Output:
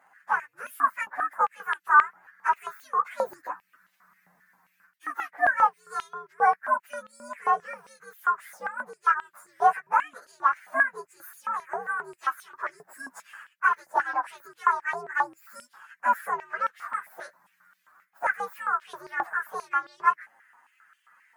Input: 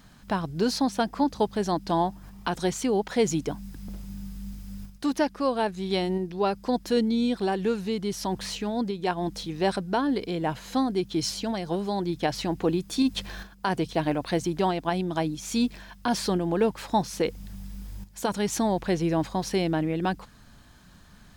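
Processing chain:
partials spread apart or drawn together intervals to 130%
high shelf with overshoot 2,300 Hz −10 dB, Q 3
high-pass on a step sequencer 7.5 Hz 760–3,100 Hz

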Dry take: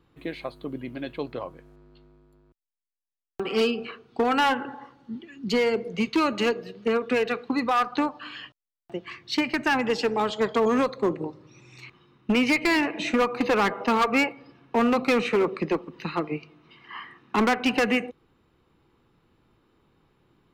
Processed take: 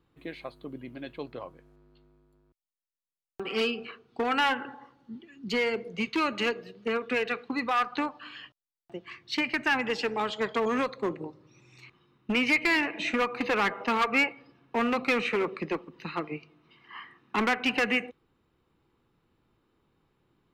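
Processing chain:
dynamic equaliser 2,200 Hz, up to +7 dB, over −40 dBFS, Q 0.8
level −6.5 dB

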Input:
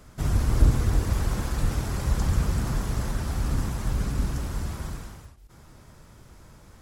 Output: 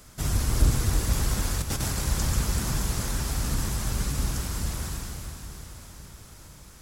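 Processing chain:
high-shelf EQ 2,700 Hz +12 dB
0:01.58–0:01.99: compressor whose output falls as the input rises −27 dBFS, ratio −0.5
on a send: feedback delay with all-pass diffusion 470 ms, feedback 53%, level −8 dB
on the sum: level −2.5 dB

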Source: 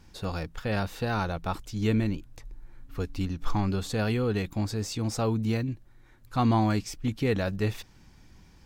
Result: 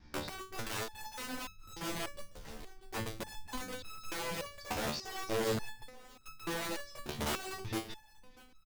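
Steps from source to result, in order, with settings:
reversed piece by piece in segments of 139 ms
low-pass filter 5,300 Hz 24 dB per octave
parametric band 2,900 Hz −6.5 dB 0.29 octaves
hum removal 46.93 Hz, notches 10
downward compressor 4 to 1, threshold −27 dBFS, peak gain reduction 7 dB
wrap-around overflow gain 27.5 dB
repeating echo 640 ms, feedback 33%, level −17 dB
step-sequenced resonator 3.4 Hz 74–1,300 Hz
level +7 dB

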